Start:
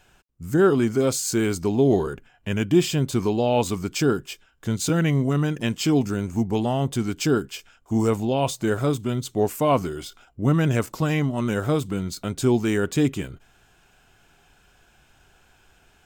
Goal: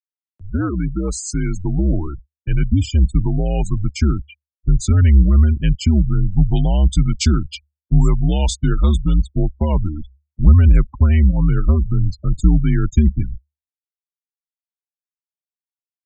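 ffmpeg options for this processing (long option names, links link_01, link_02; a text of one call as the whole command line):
ffmpeg -i in.wav -filter_complex "[0:a]aeval=exprs='sgn(val(0))*max(abs(val(0))-0.00335,0)':channel_layout=same,asplit=3[link_01][link_02][link_03];[link_01]afade=type=out:start_time=6.37:duration=0.02[link_04];[link_02]equalizer=frequency=1000:width_type=o:width=1:gain=4,equalizer=frequency=4000:width_type=o:width=1:gain=8,equalizer=frequency=8000:width_type=o:width=1:gain=5,afade=type=in:start_time=6.37:duration=0.02,afade=type=out:start_time=9.16:duration=0.02[link_05];[link_03]afade=type=in:start_time=9.16:duration=0.02[link_06];[link_04][link_05][link_06]amix=inputs=3:normalize=0,acrossover=split=150|3000[link_07][link_08][link_09];[link_08]acompressor=threshold=-21dB:ratio=3[link_10];[link_07][link_10][link_09]amix=inputs=3:normalize=0,asubboost=boost=7:cutoff=190,afftfilt=real='re*gte(hypot(re,im),0.0562)':imag='im*gte(hypot(re,im),0.0562)':win_size=1024:overlap=0.75,afreqshift=-74,acompressor=mode=upward:threshold=-36dB:ratio=2.5,volume=1.5dB" out.wav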